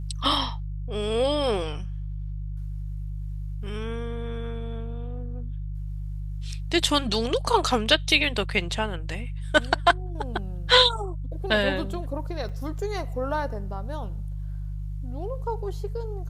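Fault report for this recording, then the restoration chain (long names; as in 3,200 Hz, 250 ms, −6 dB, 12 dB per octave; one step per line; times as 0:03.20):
mains hum 50 Hz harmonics 3 −32 dBFS
0:12.49–0:12.50: drop-out 5.3 ms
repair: hum removal 50 Hz, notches 3
repair the gap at 0:12.49, 5.3 ms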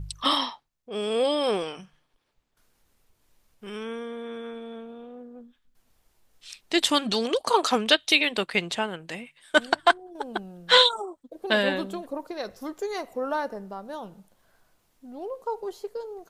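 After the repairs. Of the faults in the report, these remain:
none of them is left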